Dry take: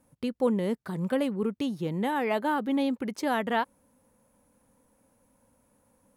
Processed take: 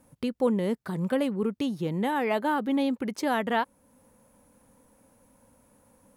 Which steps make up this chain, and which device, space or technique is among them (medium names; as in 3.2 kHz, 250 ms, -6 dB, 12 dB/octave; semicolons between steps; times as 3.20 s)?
parallel compression (in parallel at -1 dB: compression, threshold -44 dBFS, peak gain reduction 21.5 dB)